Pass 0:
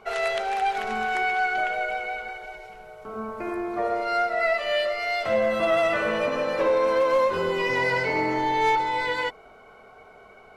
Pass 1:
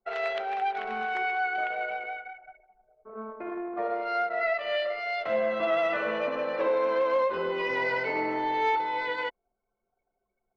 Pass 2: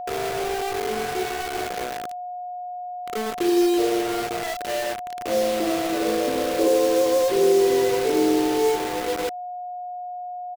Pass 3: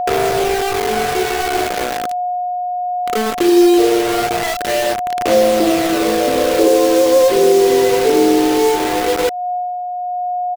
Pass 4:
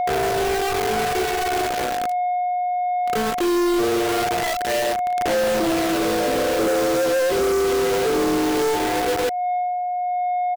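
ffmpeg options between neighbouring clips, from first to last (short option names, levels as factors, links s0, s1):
-filter_complex "[0:a]acrossover=split=190 4800:gain=0.2 1 0.126[s0][s1][s2];[s0][s1][s2]amix=inputs=3:normalize=0,anlmdn=15.8,volume=0.631"
-af "firequalizer=gain_entry='entry(220,0);entry(360,11);entry(670,-12);entry(1900,-17)':delay=0.05:min_phase=1,acrusher=bits=5:mix=0:aa=0.000001,aeval=exprs='val(0)+0.0141*sin(2*PI*720*n/s)':c=same,volume=2.24"
-filter_complex "[0:a]asplit=2[s0][s1];[s1]acompressor=threshold=0.0447:ratio=6,volume=1.06[s2];[s0][s2]amix=inputs=2:normalize=0,aphaser=in_gain=1:out_gain=1:delay=4.4:decay=0.22:speed=0.19:type=sinusoidal,volume=1.78"
-af "asoftclip=type=tanh:threshold=0.133"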